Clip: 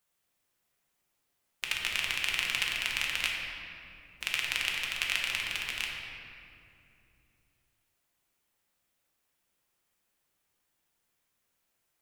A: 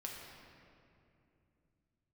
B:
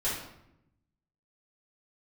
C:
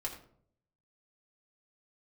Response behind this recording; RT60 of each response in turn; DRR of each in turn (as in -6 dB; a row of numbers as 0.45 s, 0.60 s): A; 2.7 s, 0.80 s, 0.60 s; -2.0 dB, -11.0 dB, -2.5 dB